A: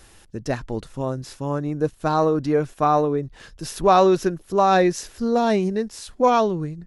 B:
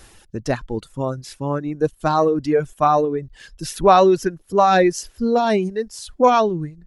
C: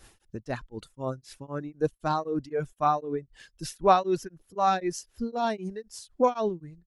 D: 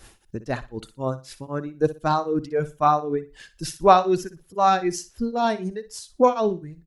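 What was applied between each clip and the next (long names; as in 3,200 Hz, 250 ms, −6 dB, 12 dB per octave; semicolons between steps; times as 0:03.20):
reverb reduction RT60 2 s; level +3.5 dB
shaped tremolo triangle 3.9 Hz, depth 100%; level −5.5 dB
repeating echo 60 ms, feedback 24%, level −15 dB; level +5.5 dB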